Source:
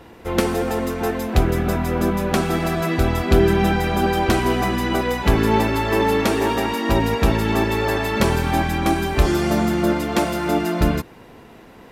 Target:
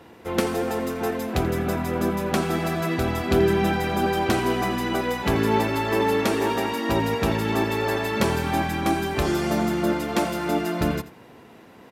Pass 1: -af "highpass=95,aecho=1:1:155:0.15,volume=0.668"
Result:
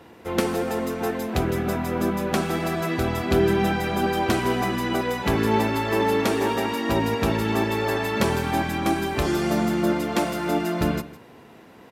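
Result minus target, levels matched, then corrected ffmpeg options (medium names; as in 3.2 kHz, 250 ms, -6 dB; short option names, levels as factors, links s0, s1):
echo 71 ms late
-af "highpass=95,aecho=1:1:84:0.15,volume=0.668"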